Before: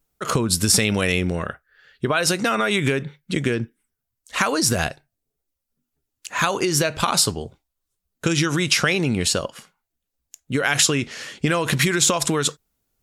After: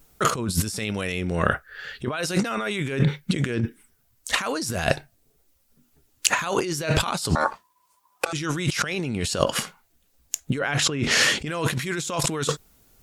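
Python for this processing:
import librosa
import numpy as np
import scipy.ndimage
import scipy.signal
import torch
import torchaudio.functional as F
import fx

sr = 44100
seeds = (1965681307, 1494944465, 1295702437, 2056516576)

y = fx.lowpass(x, sr, hz=1600.0, slope=6, at=(10.58, 11.02), fade=0.02)
y = fx.over_compress(y, sr, threshold_db=-32.0, ratio=-1.0)
y = fx.ring_mod(y, sr, carrier_hz=1000.0, at=(7.35, 8.33))
y = F.gain(torch.from_numpy(y), 6.5).numpy()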